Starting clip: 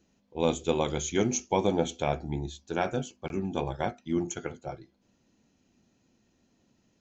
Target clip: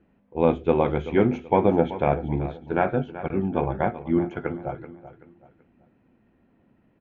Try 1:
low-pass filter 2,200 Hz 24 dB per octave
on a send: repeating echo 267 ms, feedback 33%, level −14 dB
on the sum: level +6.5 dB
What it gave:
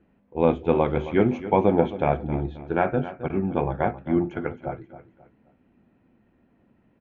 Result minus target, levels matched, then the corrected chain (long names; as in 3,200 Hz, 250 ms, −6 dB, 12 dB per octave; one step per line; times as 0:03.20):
echo 114 ms early
low-pass filter 2,200 Hz 24 dB per octave
on a send: repeating echo 381 ms, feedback 33%, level −14 dB
on the sum: level +6.5 dB